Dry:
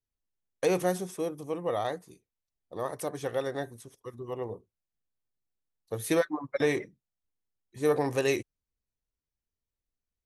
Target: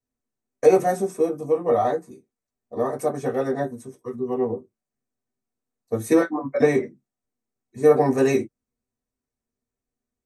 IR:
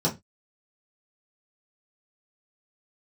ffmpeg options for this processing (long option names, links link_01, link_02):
-filter_complex "[1:a]atrim=start_sample=2205,afade=type=out:start_time=0.14:duration=0.01,atrim=end_sample=6615,asetrate=66150,aresample=44100[link_01];[0:a][link_01]afir=irnorm=-1:irlink=0,volume=-4.5dB"